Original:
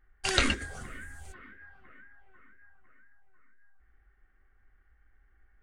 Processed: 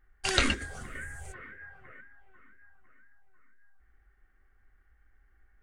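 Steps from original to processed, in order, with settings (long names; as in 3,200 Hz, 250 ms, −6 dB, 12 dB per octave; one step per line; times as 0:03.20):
0:00.95–0:02.01: graphic EQ with 10 bands 125 Hz +11 dB, 250 Hz −7 dB, 500 Hz +10 dB, 2,000 Hz +6 dB, 4,000 Hz −5 dB, 8,000 Hz +6 dB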